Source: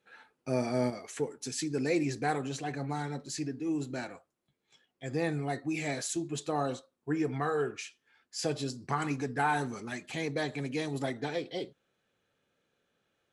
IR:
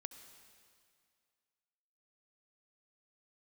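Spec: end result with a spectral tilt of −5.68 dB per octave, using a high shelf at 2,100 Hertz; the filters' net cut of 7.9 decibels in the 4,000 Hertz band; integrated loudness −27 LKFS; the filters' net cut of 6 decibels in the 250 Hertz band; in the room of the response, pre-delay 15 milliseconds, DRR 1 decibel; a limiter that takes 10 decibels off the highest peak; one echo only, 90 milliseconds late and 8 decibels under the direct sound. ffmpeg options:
-filter_complex "[0:a]equalizer=frequency=250:width_type=o:gain=-8,highshelf=frequency=2100:gain=-7,equalizer=frequency=4000:width_type=o:gain=-3,alimiter=level_in=4dB:limit=-24dB:level=0:latency=1,volume=-4dB,aecho=1:1:90:0.398,asplit=2[link_01][link_02];[1:a]atrim=start_sample=2205,adelay=15[link_03];[link_02][link_03]afir=irnorm=-1:irlink=0,volume=3.5dB[link_04];[link_01][link_04]amix=inputs=2:normalize=0,volume=9.5dB"

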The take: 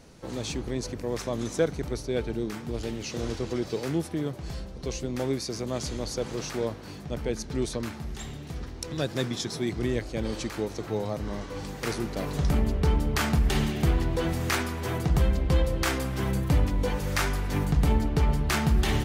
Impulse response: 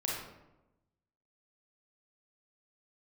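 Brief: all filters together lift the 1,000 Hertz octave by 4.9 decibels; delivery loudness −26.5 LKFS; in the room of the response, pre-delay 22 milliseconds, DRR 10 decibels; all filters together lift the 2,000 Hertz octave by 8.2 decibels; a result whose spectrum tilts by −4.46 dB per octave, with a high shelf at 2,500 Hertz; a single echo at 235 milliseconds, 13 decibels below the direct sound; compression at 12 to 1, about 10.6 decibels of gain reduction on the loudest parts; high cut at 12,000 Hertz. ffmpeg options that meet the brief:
-filter_complex "[0:a]lowpass=12000,equalizer=frequency=1000:width_type=o:gain=3.5,equalizer=frequency=2000:width_type=o:gain=7.5,highshelf=frequency=2500:gain=3.5,acompressor=threshold=-28dB:ratio=12,aecho=1:1:235:0.224,asplit=2[link_01][link_02];[1:a]atrim=start_sample=2205,adelay=22[link_03];[link_02][link_03]afir=irnorm=-1:irlink=0,volume=-14.5dB[link_04];[link_01][link_04]amix=inputs=2:normalize=0,volume=6.5dB"

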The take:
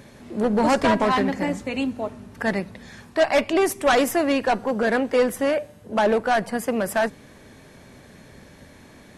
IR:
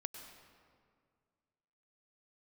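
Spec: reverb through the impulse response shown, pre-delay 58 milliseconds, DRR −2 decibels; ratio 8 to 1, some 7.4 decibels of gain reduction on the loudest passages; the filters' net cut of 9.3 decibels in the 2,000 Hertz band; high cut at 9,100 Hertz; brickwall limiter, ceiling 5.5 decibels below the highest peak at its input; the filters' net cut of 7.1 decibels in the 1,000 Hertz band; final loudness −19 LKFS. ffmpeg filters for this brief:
-filter_complex "[0:a]lowpass=9100,equalizer=frequency=1000:width_type=o:gain=-8.5,equalizer=frequency=2000:width_type=o:gain=-9,acompressor=threshold=-25dB:ratio=8,alimiter=limit=-22.5dB:level=0:latency=1,asplit=2[link_01][link_02];[1:a]atrim=start_sample=2205,adelay=58[link_03];[link_02][link_03]afir=irnorm=-1:irlink=0,volume=4.5dB[link_04];[link_01][link_04]amix=inputs=2:normalize=0,volume=9dB"

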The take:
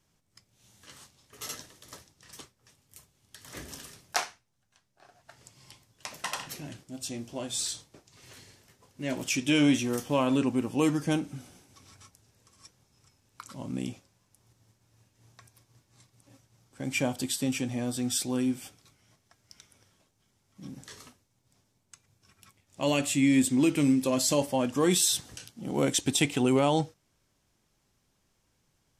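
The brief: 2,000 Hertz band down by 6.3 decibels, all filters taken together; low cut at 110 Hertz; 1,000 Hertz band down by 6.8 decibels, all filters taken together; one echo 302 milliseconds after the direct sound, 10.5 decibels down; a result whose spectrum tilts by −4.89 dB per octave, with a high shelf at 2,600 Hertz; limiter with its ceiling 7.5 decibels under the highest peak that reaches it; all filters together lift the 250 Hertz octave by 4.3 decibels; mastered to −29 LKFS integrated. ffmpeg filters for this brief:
ffmpeg -i in.wav -af "highpass=110,equalizer=frequency=250:width_type=o:gain=5.5,equalizer=frequency=1000:width_type=o:gain=-8,equalizer=frequency=2000:width_type=o:gain=-4,highshelf=frequency=2600:gain=-4.5,alimiter=limit=-18dB:level=0:latency=1,aecho=1:1:302:0.299,volume=-0.5dB" out.wav

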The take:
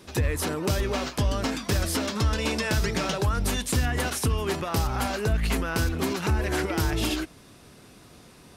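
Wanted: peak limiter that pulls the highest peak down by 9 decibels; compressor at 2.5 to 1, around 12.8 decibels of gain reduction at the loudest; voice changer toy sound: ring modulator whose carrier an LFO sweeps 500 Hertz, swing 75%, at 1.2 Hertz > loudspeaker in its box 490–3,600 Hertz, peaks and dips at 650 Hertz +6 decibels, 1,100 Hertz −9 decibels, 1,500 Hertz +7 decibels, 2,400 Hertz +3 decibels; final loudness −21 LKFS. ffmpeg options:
ffmpeg -i in.wav -af "acompressor=threshold=-40dB:ratio=2.5,alimiter=level_in=8.5dB:limit=-24dB:level=0:latency=1,volume=-8.5dB,aeval=exprs='val(0)*sin(2*PI*500*n/s+500*0.75/1.2*sin(2*PI*1.2*n/s))':channel_layout=same,highpass=490,equalizer=frequency=650:width_type=q:width=4:gain=6,equalizer=frequency=1100:width_type=q:width=4:gain=-9,equalizer=frequency=1500:width_type=q:width=4:gain=7,equalizer=frequency=2400:width_type=q:width=4:gain=3,lowpass=frequency=3600:width=0.5412,lowpass=frequency=3600:width=1.3066,volume=24dB" out.wav

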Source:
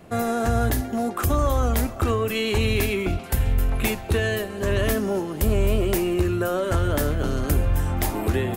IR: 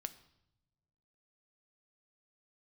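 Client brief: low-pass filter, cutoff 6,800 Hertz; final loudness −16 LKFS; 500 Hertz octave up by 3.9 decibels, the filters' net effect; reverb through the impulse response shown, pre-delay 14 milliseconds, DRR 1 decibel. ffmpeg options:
-filter_complex "[0:a]lowpass=6800,equalizer=frequency=500:width_type=o:gain=5,asplit=2[link_01][link_02];[1:a]atrim=start_sample=2205,adelay=14[link_03];[link_02][link_03]afir=irnorm=-1:irlink=0,volume=2dB[link_04];[link_01][link_04]amix=inputs=2:normalize=0,volume=3.5dB"

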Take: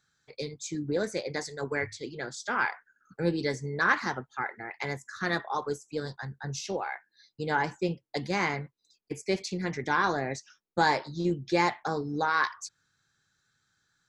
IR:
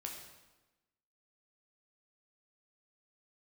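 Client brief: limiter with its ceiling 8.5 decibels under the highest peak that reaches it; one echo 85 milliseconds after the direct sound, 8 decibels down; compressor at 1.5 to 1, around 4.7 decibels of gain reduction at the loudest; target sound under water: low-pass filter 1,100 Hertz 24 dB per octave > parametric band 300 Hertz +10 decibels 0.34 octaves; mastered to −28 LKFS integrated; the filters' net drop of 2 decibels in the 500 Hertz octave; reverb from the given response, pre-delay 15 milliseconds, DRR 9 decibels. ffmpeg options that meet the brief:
-filter_complex "[0:a]equalizer=frequency=500:width_type=o:gain=-5,acompressor=threshold=-33dB:ratio=1.5,alimiter=level_in=0.5dB:limit=-24dB:level=0:latency=1,volume=-0.5dB,aecho=1:1:85:0.398,asplit=2[link_01][link_02];[1:a]atrim=start_sample=2205,adelay=15[link_03];[link_02][link_03]afir=irnorm=-1:irlink=0,volume=-7dB[link_04];[link_01][link_04]amix=inputs=2:normalize=0,lowpass=frequency=1100:width=0.5412,lowpass=frequency=1100:width=1.3066,equalizer=frequency=300:width_type=o:width=0.34:gain=10,volume=7.5dB"

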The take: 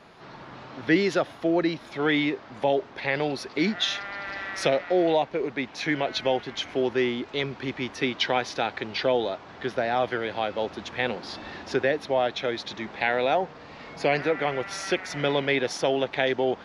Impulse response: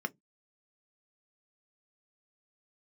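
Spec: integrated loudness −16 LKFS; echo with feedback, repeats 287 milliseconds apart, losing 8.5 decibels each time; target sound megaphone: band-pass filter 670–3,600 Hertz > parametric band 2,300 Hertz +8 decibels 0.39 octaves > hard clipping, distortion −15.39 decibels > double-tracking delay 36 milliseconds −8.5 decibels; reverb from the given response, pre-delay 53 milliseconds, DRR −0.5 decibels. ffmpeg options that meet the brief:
-filter_complex "[0:a]aecho=1:1:287|574|861|1148:0.376|0.143|0.0543|0.0206,asplit=2[link_01][link_02];[1:a]atrim=start_sample=2205,adelay=53[link_03];[link_02][link_03]afir=irnorm=-1:irlink=0,volume=-3dB[link_04];[link_01][link_04]amix=inputs=2:normalize=0,highpass=670,lowpass=3600,equalizer=frequency=2300:width_type=o:width=0.39:gain=8,asoftclip=type=hard:threshold=-17dB,asplit=2[link_05][link_06];[link_06]adelay=36,volume=-8.5dB[link_07];[link_05][link_07]amix=inputs=2:normalize=0,volume=8.5dB"

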